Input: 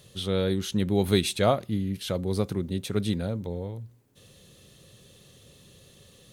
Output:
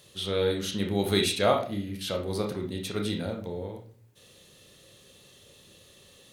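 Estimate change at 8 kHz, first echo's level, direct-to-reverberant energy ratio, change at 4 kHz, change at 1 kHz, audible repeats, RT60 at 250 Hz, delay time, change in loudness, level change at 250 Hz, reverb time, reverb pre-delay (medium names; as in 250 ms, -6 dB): +0.5 dB, no echo, 1.5 dB, +2.0 dB, +1.0 dB, no echo, 0.60 s, no echo, -1.5 dB, -3.5 dB, 0.45 s, 28 ms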